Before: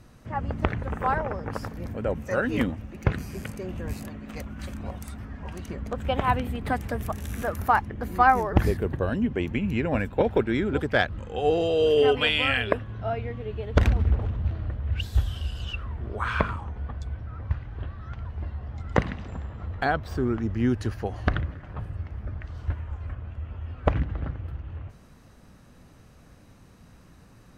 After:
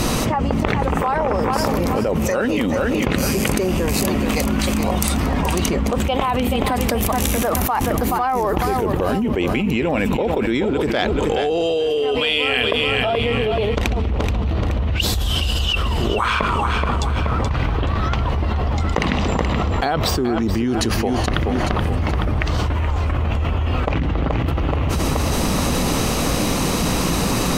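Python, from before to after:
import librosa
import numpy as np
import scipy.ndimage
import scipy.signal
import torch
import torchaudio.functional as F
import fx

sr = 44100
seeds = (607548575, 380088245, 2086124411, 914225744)

p1 = fx.graphic_eq_15(x, sr, hz=(100, 630, 1600), db=(-7, -3, -10))
p2 = np.clip(p1, -10.0 ** (-17.0 / 20.0), 10.0 ** (-17.0 / 20.0))
p3 = p1 + (p2 * 10.0 ** (-12.0 / 20.0))
p4 = fx.low_shelf(p3, sr, hz=270.0, db=-9.5)
p5 = fx.echo_feedback(p4, sr, ms=427, feedback_pct=33, wet_db=-11)
p6 = fx.env_flatten(p5, sr, amount_pct=100)
y = p6 * 10.0 ** (-1.5 / 20.0)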